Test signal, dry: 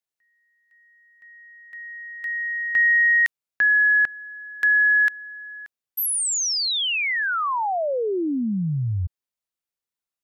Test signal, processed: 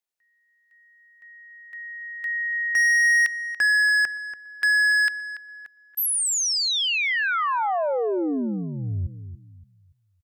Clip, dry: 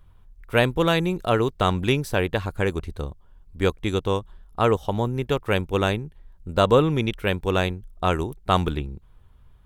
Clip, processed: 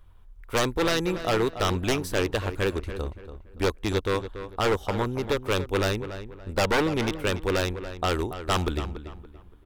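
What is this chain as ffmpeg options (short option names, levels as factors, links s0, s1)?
-filter_complex "[0:a]aeval=exprs='0.158*(abs(mod(val(0)/0.158+3,4)-2)-1)':c=same,equalizer=f=150:t=o:w=0.69:g=-9,asplit=2[s0][s1];[s1]adelay=285,lowpass=f=2800:p=1,volume=0.282,asplit=2[s2][s3];[s3]adelay=285,lowpass=f=2800:p=1,volume=0.33,asplit=2[s4][s5];[s5]adelay=285,lowpass=f=2800:p=1,volume=0.33,asplit=2[s6][s7];[s7]adelay=285,lowpass=f=2800:p=1,volume=0.33[s8];[s0][s2][s4][s6][s8]amix=inputs=5:normalize=0"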